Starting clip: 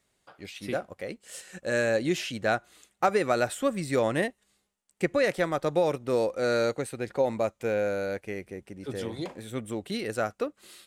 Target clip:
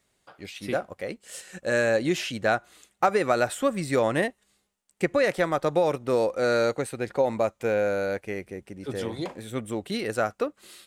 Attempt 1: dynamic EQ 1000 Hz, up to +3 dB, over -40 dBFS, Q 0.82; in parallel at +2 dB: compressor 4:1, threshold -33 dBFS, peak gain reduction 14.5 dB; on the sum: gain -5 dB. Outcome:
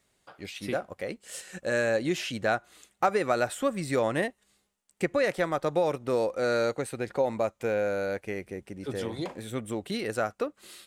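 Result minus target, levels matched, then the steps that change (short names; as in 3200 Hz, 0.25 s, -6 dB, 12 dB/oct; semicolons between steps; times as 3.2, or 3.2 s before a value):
compressor: peak gain reduction +8.5 dB
change: compressor 4:1, threshold -21.5 dBFS, peak gain reduction 6 dB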